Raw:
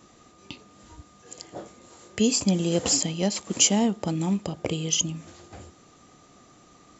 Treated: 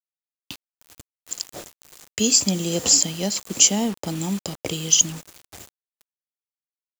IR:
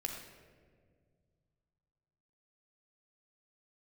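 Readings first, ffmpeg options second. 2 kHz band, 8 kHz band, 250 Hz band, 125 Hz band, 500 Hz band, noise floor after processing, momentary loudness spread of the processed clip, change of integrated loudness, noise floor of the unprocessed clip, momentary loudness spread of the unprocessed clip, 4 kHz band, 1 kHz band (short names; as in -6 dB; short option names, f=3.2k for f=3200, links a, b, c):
+2.0 dB, n/a, -1.0 dB, -1.0 dB, -1.0 dB, under -85 dBFS, 16 LU, +4.5 dB, -55 dBFS, 20 LU, +5.5 dB, -1.0 dB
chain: -filter_complex "[0:a]acrossover=split=220|3400[a][b][c];[c]dynaudnorm=f=340:g=3:m=14dB[d];[a][b][d]amix=inputs=3:normalize=0,acrusher=bits=5:mix=0:aa=0.000001,volume=-1dB"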